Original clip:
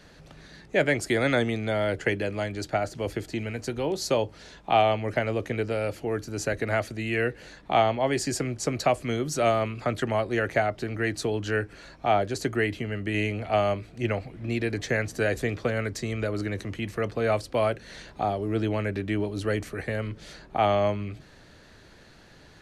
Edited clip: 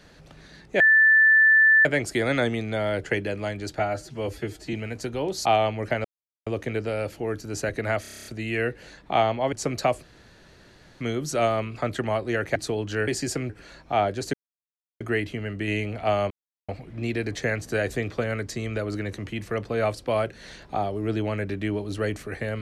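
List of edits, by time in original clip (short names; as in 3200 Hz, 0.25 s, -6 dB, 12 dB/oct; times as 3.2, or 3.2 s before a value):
0.8 add tone 1760 Hz -13 dBFS 1.05 s
2.74–3.37 stretch 1.5×
4.09–4.71 cut
5.3 insert silence 0.42 s
6.85 stutter 0.03 s, 9 plays
8.12–8.54 move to 11.63
9.04 insert room tone 0.98 s
10.59–11.11 cut
12.47 insert silence 0.67 s
13.77–14.15 mute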